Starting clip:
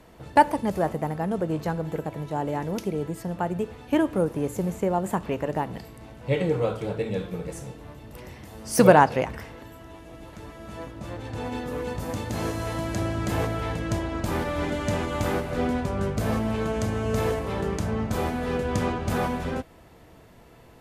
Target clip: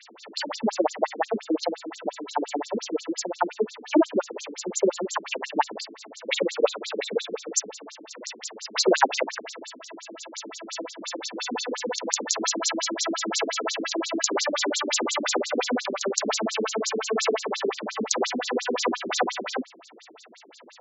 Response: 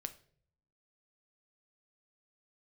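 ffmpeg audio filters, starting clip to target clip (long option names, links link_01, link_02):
-filter_complex "[0:a]acrossover=split=160|1200|5400[link_01][link_02][link_03][link_04];[link_04]dynaudnorm=framelen=290:gausssize=31:maxgain=9dB[link_05];[link_01][link_02][link_03][link_05]amix=inputs=4:normalize=0,aemphasis=mode=production:type=riaa,asoftclip=type=hard:threshold=-7.5dB,alimiter=level_in=12dB:limit=-1dB:release=50:level=0:latency=1,afftfilt=real='re*between(b*sr/1024,270*pow(5500/270,0.5+0.5*sin(2*PI*5.7*pts/sr))/1.41,270*pow(5500/270,0.5+0.5*sin(2*PI*5.7*pts/sr))*1.41)':imag='im*between(b*sr/1024,270*pow(5500/270,0.5+0.5*sin(2*PI*5.7*pts/sr))/1.41,270*pow(5500/270,0.5+0.5*sin(2*PI*5.7*pts/sr))*1.41)':win_size=1024:overlap=0.75"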